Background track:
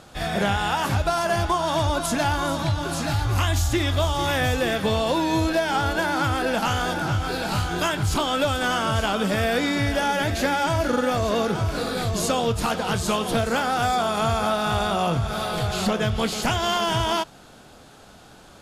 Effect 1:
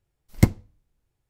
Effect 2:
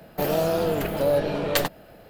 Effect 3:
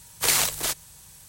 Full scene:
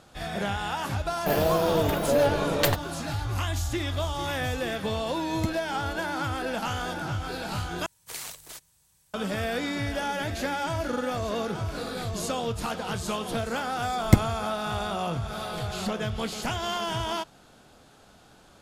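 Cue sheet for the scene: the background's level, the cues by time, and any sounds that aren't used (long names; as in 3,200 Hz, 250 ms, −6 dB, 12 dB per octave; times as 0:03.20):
background track −7 dB
0:01.08: mix in 2 −1 dB
0:05.01: mix in 1 −13.5 dB
0:07.86: overwrite with 3 −16.5 dB
0:13.70: mix in 1 −0.5 dB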